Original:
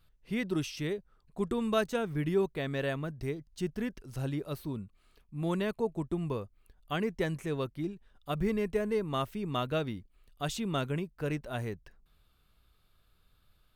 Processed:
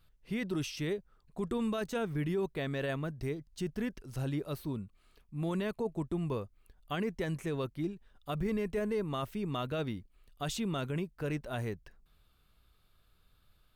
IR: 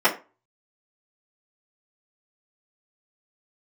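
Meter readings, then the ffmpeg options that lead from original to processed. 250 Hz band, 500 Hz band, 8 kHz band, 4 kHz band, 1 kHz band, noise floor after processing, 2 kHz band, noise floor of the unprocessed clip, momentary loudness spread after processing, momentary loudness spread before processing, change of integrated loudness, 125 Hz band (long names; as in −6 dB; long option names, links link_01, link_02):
−1.5 dB, −3.0 dB, −0.5 dB, −2.5 dB, −3.5 dB, −68 dBFS, −2.5 dB, −68 dBFS, 7 LU, 9 LU, −2.0 dB, −1.0 dB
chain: -af "alimiter=level_in=1dB:limit=-24dB:level=0:latency=1:release=11,volume=-1dB"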